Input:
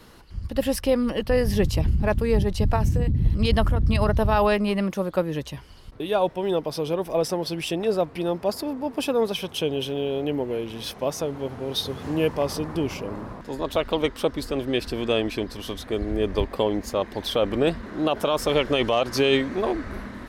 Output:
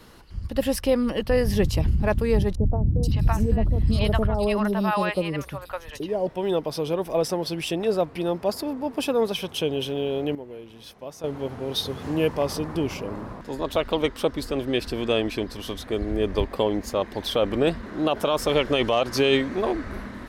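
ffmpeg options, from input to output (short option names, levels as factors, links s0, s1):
-filter_complex "[0:a]asettb=1/sr,asplit=3[s0][s1][s2];[s0]atrim=end=2.554[s3];[s1]atrim=start=2.55:end=6.27,asetpts=PTS-STARTPTS,afade=t=in:d=0.004:c=qsin,afade=t=out:st=3.716:d=0.004:c=qsin,acrossover=split=680|4000[s4][s5][s6];[s6]adelay=480[s7];[s5]adelay=560[s8];[s4][s8][s7]amix=inputs=3:normalize=0,atrim=end_sample=164052[s9];[s2]atrim=start=6.266[s10];[s3][s9]acrossfade=d=0.004:c1=hsin:c2=qsin[s11];[s11][s10]acrossfade=d=0.004:c1=qsin:c2=hsin,asplit=3[s12][s13][s14];[s12]atrim=end=10.352[s15];[s13]atrim=start=10.348:end=11.242,asetpts=PTS-STARTPTS,volume=0.266[s16];[s14]atrim=start=11.238[s17];[s15][s16]acrossfade=d=0.004:c1=hsin:c2=hsin[s18];[s18][s17]acrossfade=d=0.004:c1=hsin:c2=hsin"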